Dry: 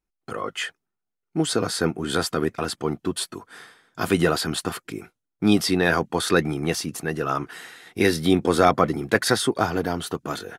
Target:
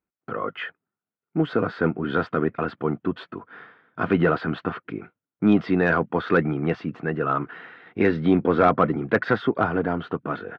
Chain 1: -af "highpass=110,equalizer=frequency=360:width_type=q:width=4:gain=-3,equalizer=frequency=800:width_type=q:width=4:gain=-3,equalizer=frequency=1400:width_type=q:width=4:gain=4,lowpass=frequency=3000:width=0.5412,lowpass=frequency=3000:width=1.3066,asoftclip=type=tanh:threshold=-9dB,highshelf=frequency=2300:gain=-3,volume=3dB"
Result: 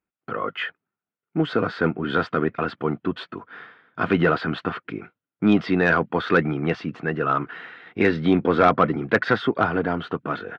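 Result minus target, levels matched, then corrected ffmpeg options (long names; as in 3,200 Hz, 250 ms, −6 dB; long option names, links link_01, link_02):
4,000 Hz band +5.0 dB
-af "highpass=110,equalizer=frequency=360:width_type=q:width=4:gain=-3,equalizer=frequency=800:width_type=q:width=4:gain=-3,equalizer=frequency=1400:width_type=q:width=4:gain=4,lowpass=frequency=3000:width=0.5412,lowpass=frequency=3000:width=1.3066,asoftclip=type=tanh:threshold=-9dB,highshelf=frequency=2300:gain=-12,volume=3dB"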